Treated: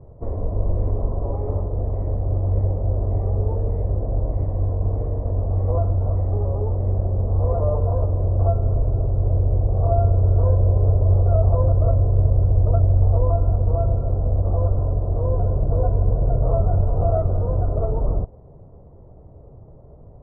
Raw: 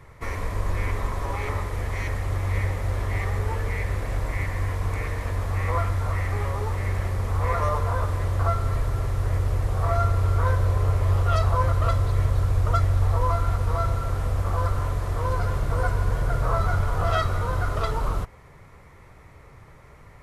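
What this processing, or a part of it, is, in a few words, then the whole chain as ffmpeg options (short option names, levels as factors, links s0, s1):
under water: -af "lowpass=f=640:w=0.5412,lowpass=f=640:w=1.3066,equalizer=f=670:t=o:w=0.35:g=5,volume=1.78"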